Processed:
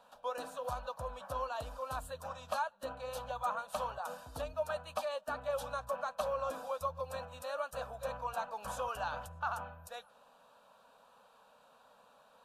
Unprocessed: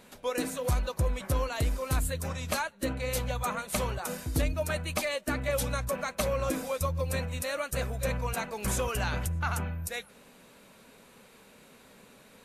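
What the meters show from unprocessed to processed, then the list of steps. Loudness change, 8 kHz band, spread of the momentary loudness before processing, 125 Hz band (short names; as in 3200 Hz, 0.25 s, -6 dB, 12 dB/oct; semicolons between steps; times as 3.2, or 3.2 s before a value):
-8.0 dB, -16.5 dB, 3 LU, -19.5 dB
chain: three-band isolator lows -19 dB, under 370 Hz, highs -17 dB, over 3400 Hz; fixed phaser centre 870 Hz, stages 4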